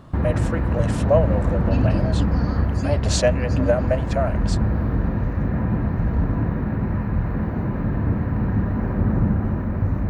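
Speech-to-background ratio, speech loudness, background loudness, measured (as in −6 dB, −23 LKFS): −3.0 dB, −25.5 LKFS, −22.5 LKFS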